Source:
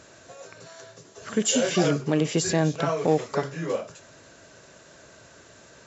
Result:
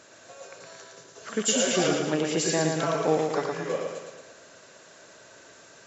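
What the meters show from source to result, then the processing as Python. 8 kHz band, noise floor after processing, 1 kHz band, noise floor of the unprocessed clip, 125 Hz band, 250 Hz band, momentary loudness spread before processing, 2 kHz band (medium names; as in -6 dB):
no reading, -52 dBFS, +0.5 dB, -52 dBFS, -6.0 dB, -3.0 dB, 21 LU, +1.0 dB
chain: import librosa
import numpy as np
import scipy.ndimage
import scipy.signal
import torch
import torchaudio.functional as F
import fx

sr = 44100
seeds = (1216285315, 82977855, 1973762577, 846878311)

p1 = fx.highpass(x, sr, hz=320.0, slope=6)
p2 = p1 + fx.echo_feedback(p1, sr, ms=113, feedback_pct=53, wet_db=-4.0, dry=0)
y = p2 * librosa.db_to_amplitude(-1.0)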